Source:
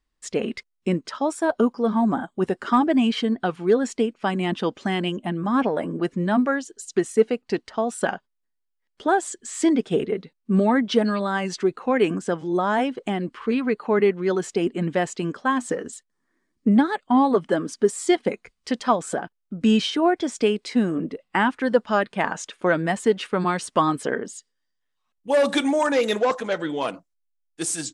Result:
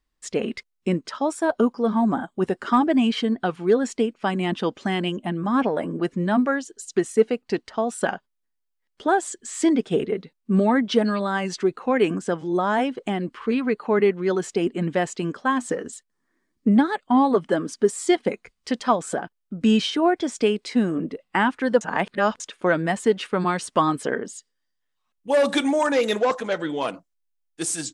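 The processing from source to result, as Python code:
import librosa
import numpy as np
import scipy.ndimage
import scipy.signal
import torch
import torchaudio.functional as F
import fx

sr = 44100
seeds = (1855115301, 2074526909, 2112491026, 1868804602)

y = fx.edit(x, sr, fx.reverse_span(start_s=21.81, length_s=0.59), tone=tone)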